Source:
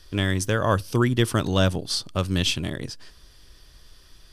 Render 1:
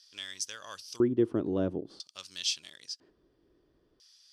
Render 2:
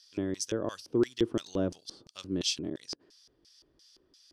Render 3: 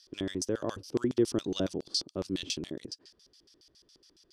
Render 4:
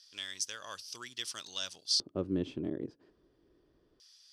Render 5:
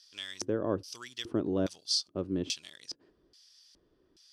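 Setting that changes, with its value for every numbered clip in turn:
LFO band-pass, rate: 0.5, 2.9, 7.2, 0.25, 1.2 Hz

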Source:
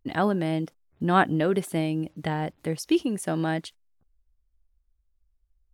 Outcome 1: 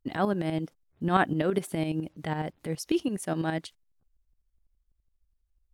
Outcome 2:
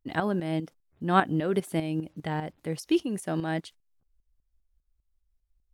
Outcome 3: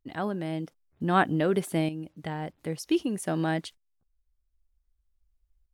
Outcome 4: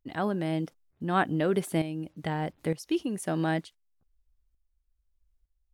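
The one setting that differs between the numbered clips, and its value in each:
tremolo, rate: 12, 5, 0.53, 1.1 Hz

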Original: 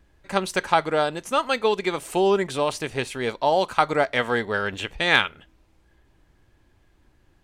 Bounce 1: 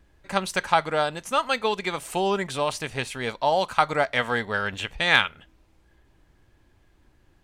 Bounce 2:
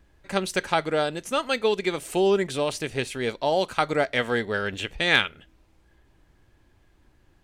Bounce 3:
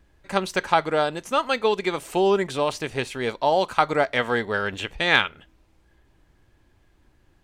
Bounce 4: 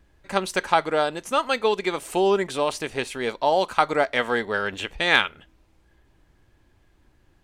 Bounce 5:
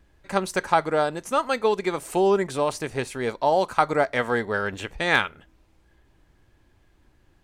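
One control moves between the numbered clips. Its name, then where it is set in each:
dynamic EQ, frequency: 360, 990, 9900, 120, 3100 Hz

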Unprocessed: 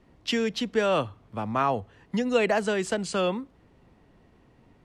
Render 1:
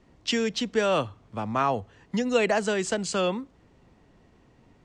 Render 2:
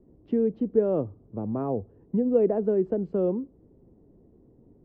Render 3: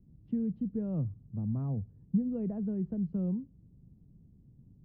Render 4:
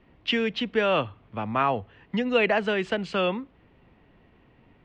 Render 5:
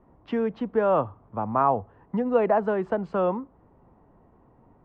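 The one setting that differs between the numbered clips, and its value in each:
synth low-pass, frequency: 7300, 400, 160, 2800, 1000 Hz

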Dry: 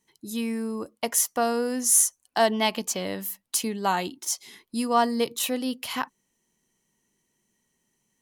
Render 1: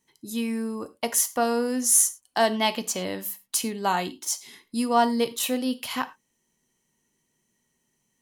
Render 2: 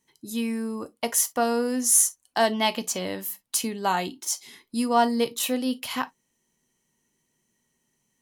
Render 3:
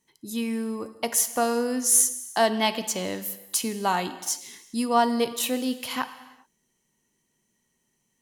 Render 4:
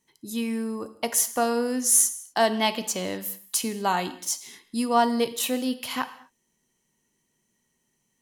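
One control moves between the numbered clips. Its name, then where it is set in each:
non-linear reverb, gate: 130, 80, 440, 270 ms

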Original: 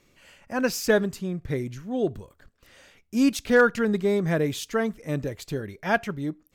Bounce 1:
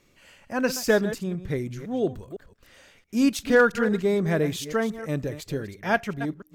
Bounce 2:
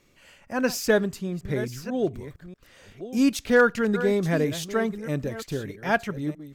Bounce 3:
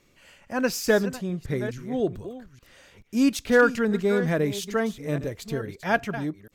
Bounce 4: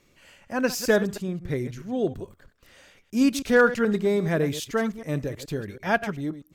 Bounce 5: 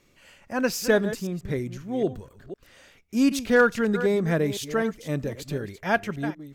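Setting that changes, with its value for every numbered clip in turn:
reverse delay, time: 0.169, 0.635, 0.432, 0.107, 0.254 s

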